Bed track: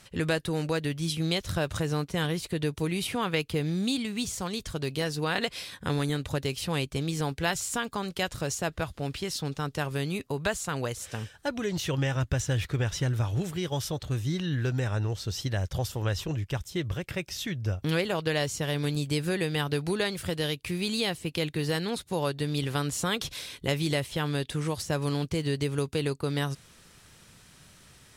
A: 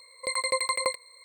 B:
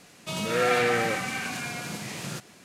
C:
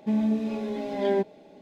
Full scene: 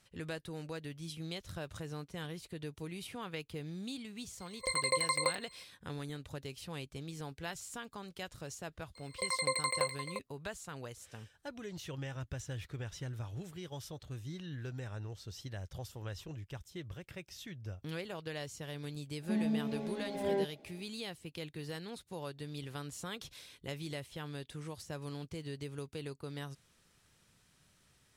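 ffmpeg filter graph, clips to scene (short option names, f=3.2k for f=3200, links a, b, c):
-filter_complex "[1:a]asplit=2[a][b];[0:a]volume=-14dB[c];[b]asplit=2[d][e];[e]adelay=349.9,volume=-8dB,highshelf=f=4k:g=-7.87[f];[d][f]amix=inputs=2:normalize=0[g];[a]atrim=end=1.24,asetpts=PTS-STARTPTS,volume=-4.5dB,afade=t=in:d=0.004:c=hsin,afade=t=out:st=1.236:d=0.004:c=hsin,adelay=4400[h];[g]atrim=end=1.24,asetpts=PTS-STARTPTS,volume=-6dB,afade=t=in:d=0.004:c=hsin,afade=t=out:st=1.236:d=0.004:c=hsin,adelay=8950[i];[3:a]atrim=end=1.61,asetpts=PTS-STARTPTS,volume=-8.5dB,afade=t=in:d=0.004:c=hsin,afade=t=out:st=1.606:d=0.004:c=hsin,adelay=19220[j];[c][h][i][j]amix=inputs=4:normalize=0"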